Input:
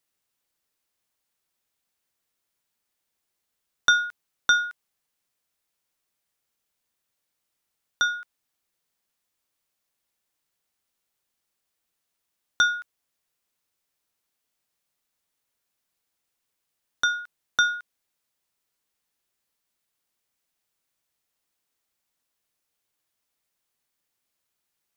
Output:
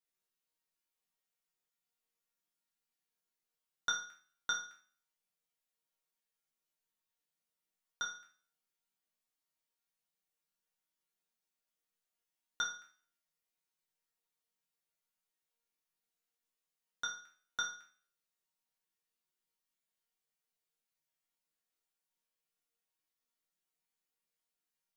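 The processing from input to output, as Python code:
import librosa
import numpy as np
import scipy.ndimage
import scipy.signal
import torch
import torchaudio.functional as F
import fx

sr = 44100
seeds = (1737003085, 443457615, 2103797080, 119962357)

y = fx.resonator_bank(x, sr, root=51, chord='minor', decay_s=0.47)
y = y * librosa.db_to_amplitude(7.0)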